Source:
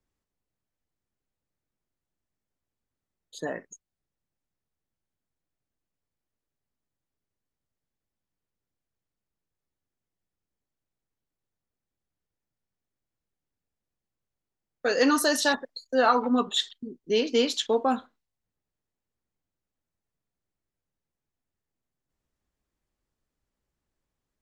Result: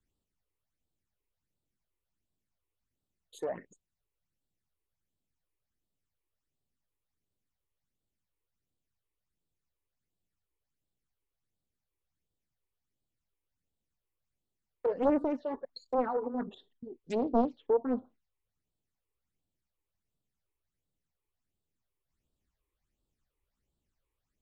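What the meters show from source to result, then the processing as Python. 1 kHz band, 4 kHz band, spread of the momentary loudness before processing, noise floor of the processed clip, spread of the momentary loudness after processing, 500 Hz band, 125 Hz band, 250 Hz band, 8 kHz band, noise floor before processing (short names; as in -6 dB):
-8.5 dB, -26.0 dB, 14 LU, under -85 dBFS, 15 LU, -5.0 dB, n/a, -5.0 dB, under -25 dB, under -85 dBFS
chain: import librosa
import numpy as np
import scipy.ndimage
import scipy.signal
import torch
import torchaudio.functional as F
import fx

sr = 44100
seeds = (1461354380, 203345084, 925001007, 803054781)

y = fx.phaser_stages(x, sr, stages=8, low_hz=190.0, high_hz=2000.0, hz=1.4, feedback_pct=25)
y = fx.env_lowpass_down(y, sr, base_hz=510.0, full_db=-27.5)
y = fx.doppler_dist(y, sr, depth_ms=0.94)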